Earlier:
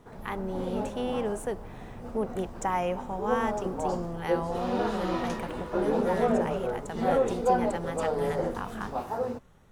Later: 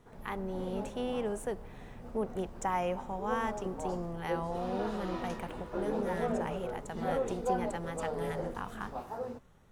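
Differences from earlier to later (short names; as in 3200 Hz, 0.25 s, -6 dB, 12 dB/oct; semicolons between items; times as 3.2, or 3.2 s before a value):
speech -3.5 dB; background -8.0 dB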